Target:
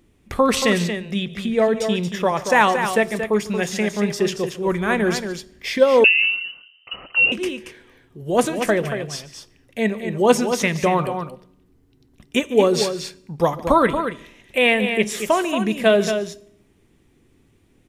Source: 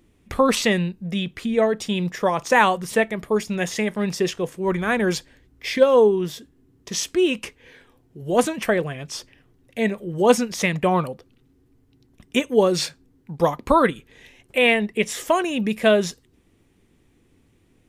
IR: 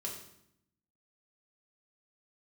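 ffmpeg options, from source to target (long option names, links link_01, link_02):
-filter_complex "[0:a]aecho=1:1:145|229:0.112|0.398,asplit=2[link_01][link_02];[1:a]atrim=start_sample=2205[link_03];[link_02][link_03]afir=irnorm=-1:irlink=0,volume=-15dB[link_04];[link_01][link_04]amix=inputs=2:normalize=0,asettb=1/sr,asplit=3[link_05][link_06][link_07];[link_05]atrim=end=6.044[link_08];[link_06]atrim=start=6.04:end=7.32,asetpts=PTS-STARTPTS,afade=type=in:duration=0.004:curve=qsin,afade=type=out:start_time=1.276:duration=0.004:curve=qsin,lowpass=frequency=2600:width_type=q:width=0.5098,lowpass=frequency=2600:width_type=q:width=0.6013,lowpass=frequency=2600:width_type=q:width=0.9,lowpass=frequency=2600:width_type=q:width=2.563,afreqshift=-3100[link_09];[link_07]atrim=start=7.316[link_10];[link_08][link_09]acrossfade=duration=0.004:curve1=hsin:curve2=qsin[link_11];[link_11][link_10]acrossfade=duration=0.004:curve1=qsin:curve2=hsin"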